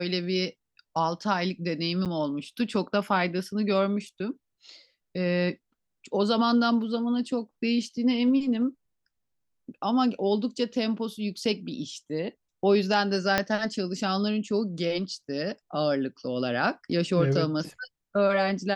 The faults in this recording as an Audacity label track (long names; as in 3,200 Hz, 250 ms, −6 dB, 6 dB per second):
2.050000	2.060000	drop-out 7.8 ms
13.380000	13.380000	click −7 dBFS